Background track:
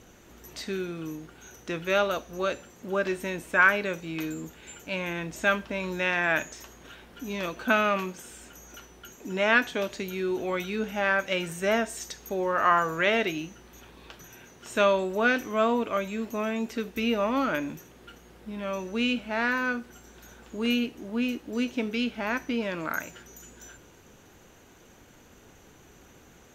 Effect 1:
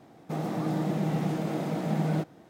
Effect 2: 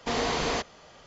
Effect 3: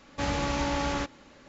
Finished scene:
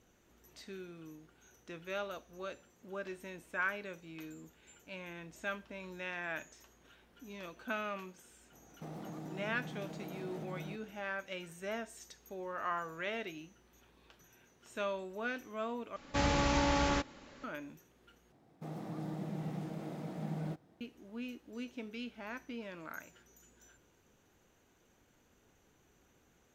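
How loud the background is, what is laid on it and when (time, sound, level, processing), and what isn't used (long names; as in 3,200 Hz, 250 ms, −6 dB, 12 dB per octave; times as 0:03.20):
background track −15 dB
0:08.52: mix in 1 −9.5 dB + downward compressor, threshold −32 dBFS
0:15.96: overwrite with 3 −1.5 dB
0:18.32: overwrite with 1 −13.5 dB + low-shelf EQ 82 Hz +10.5 dB
not used: 2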